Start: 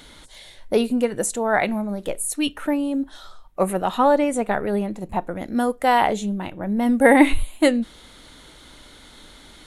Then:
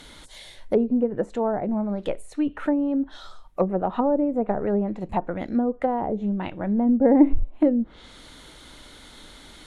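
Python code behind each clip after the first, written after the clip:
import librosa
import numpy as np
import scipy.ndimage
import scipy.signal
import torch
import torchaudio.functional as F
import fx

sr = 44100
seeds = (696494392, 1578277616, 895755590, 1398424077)

y = fx.env_lowpass_down(x, sr, base_hz=460.0, full_db=-16.5)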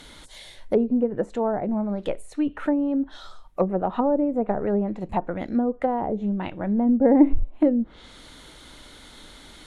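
y = x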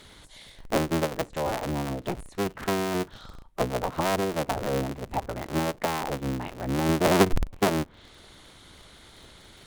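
y = fx.cycle_switch(x, sr, every=3, mode='inverted')
y = y * librosa.db_to_amplitude(-4.5)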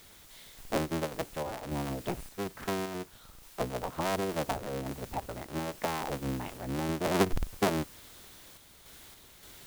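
y = fx.quant_dither(x, sr, seeds[0], bits=8, dither='triangular')
y = fx.tremolo_random(y, sr, seeds[1], hz=3.5, depth_pct=55)
y = y * librosa.db_to_amplitude(-3.5)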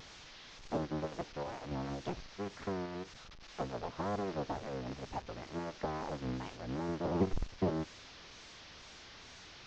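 y = fx.delta_mod(x, sr, bps=32000, step_db=-42.0)
y = fx.wow_flutter(y, sr, seeds[2], rate_hz=2.1, depth_cents=110.0)
y = y * librosa.db_to_amplitude(-4.5)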